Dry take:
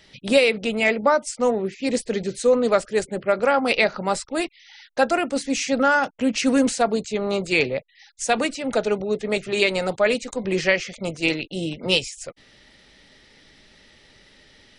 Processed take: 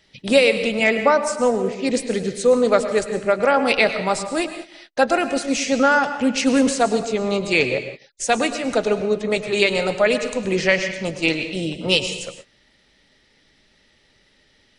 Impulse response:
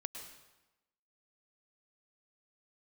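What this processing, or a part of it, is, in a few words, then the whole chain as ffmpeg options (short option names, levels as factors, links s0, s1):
keyed gated reverb: -filter_complex "[0:a]asplit=3[s0][s1][s2];[1:a]atrim=start_sample=2205[s3];[s1][s3]afir=irnorm=-1:irlink=0[s4];[s2]apad=whole_len=651856[s5];[s4][s5]sidechaingate=range=0.00224:threshold=0.00501:ratio=16:detection=peak,volume=2.11[s6];[s0][s6]amix=inputs=2:normalize=0,volume=0.501"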